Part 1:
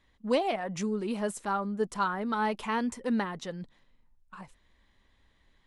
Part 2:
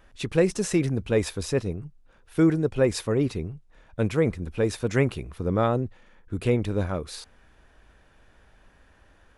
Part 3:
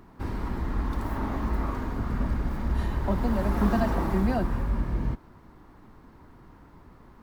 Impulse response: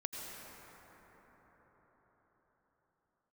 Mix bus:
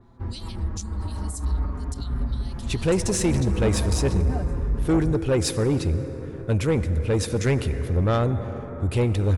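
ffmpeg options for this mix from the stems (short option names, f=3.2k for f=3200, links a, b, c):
-filter_complex "[0:a]firequalizer=gain_entry='entry(150,0);entry(530,-27);entry(4000,11)':delay=0.05:min_phase=1,volume=-8.5dB,asplit=2[a][b];[1:a]adelay=2500,volume=0.5dB,asplit=2[c][d];[d]volume=-8.5dB[e];[2:a]lowpass=f=1.3k:p=1,asplit=2[f][g];[g]adelay=5.4,afreqshift=-0.39[h];[f][h]amix=inputs=2:normalize=1,volume=0dB[i];[b]apad=whole_len=318807[j];[i][j]sidechaincompress=threshold=-45dB:ratio=8:attack=8.4:release=107[k];[3:a]atrim=start_sample=2205[l];[e][l]afir=irnorm=-1:irlink=0[m];[a][c][k][m]amix=inputs=4:normalize=0,equalizer=f=75:t=o:w=0.88:g=13.5,asoftclip=type=tanh:threshold=-15dB,adynamicequalizer=threshold=0.00562:dfrequency=3900:dqfactor=0.7:tfrequency=3900:tqfactor=0.7:attack=5:release=100:ratio=0.375:range=2.5:mode=boostabove:tftype=highshelf"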